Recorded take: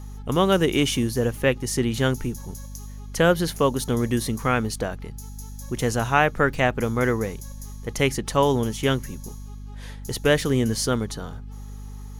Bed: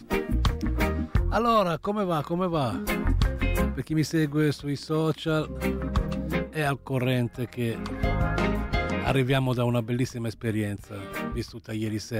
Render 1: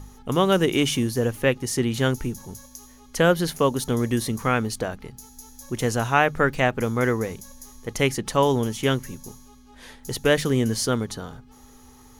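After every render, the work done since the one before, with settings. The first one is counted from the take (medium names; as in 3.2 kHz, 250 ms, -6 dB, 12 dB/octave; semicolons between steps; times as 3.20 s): de-hum 50 Hz, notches 4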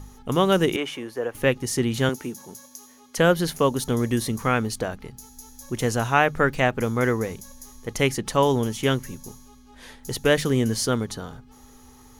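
0.76–1.35 s: three-band isolator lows -21 dB, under 370 Hz, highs -15 dB, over 2.5 kHz; 2.09–3.18 s: high-pass 230 Hz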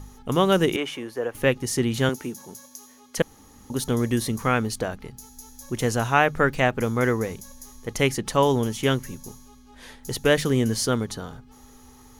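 3.22–3.70 s: room tone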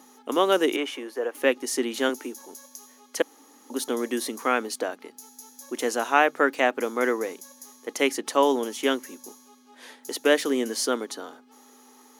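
elliptic high-pass 270 Hz, stop band 80 dB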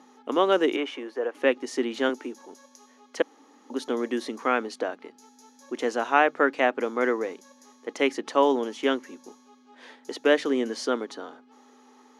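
low-pass 6.4 kHz 12 dB/octave; treble shelf 4.7 kHz -9.5 dB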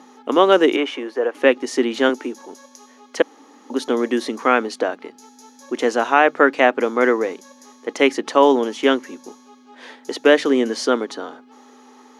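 trim +8 dB; peak limiter -1 dBFS, peak gain reduction 3 dB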